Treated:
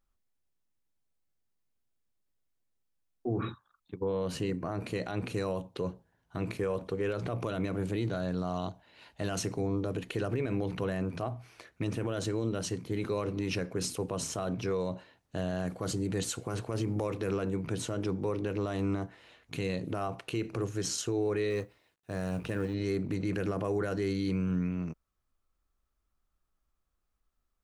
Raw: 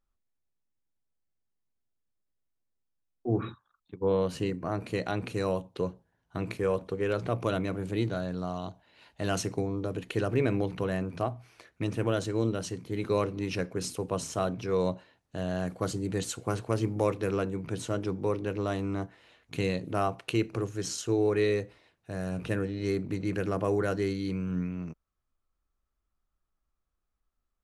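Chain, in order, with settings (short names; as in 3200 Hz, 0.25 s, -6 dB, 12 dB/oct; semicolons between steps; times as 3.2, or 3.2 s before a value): 21.5–22.74 G.711 law mismatch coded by A; limiter -25 dBFS, peak gain reduction 11.5 dB; gain +2 dB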